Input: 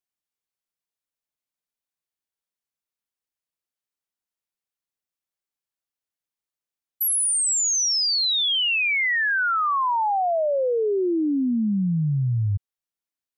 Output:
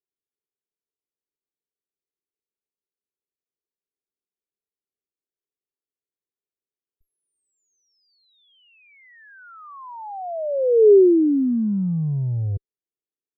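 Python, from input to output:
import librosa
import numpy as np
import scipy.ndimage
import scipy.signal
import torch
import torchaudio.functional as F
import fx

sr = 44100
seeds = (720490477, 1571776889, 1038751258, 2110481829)

y = fx.cheby_harmonics(x, sr, harmonics=(3, 4, 7), levels_db=(-36, -39, -26), full_scale_db=-18.5)
y = fx.lowpass_res(y, sr, hz=410.0, q=4.9)
y = y * librosa.db_to_amplitude(-1.5)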